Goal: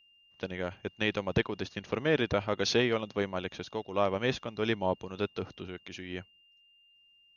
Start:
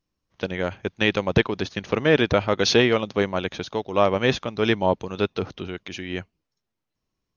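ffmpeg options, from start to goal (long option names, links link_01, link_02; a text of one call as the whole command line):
ffmpeg -i in.wav -af "aeval=exprs='val(0)+0.00251*sin(2*PI*2800*n/s)':channel_layout=same,volume=-9dB" out.wav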